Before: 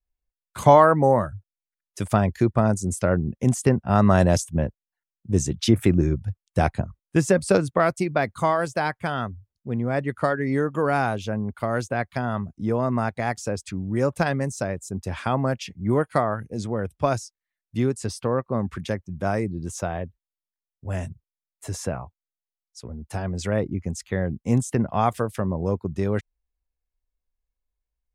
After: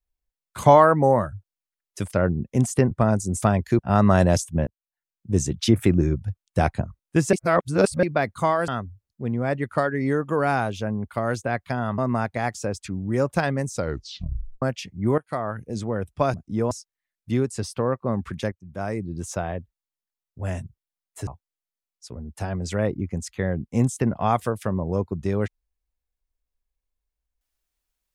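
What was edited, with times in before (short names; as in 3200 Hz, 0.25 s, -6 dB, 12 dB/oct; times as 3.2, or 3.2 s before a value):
2.11–2.48 swap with 2.99–3.79
4.67–5.47 fade in equal-power
7.33–8.03 reverse
8.68–9.14 cut
12.44–12.81 move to 17.17
14.55 tape stop 0.90 s
16.01–16.46 fade in, from -18 dB
18.98–19.65 fade in, from -15.5 dB
21.73–22 cut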